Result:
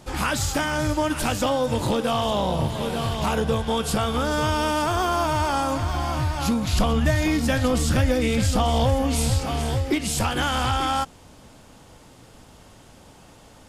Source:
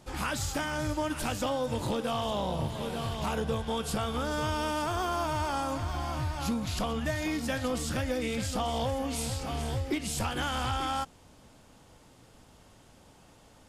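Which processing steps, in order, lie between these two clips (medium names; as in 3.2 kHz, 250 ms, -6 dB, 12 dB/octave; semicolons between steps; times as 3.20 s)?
6.73–9.40 s: bass shelf 140 Hz +8.5 dB; trim +8 dB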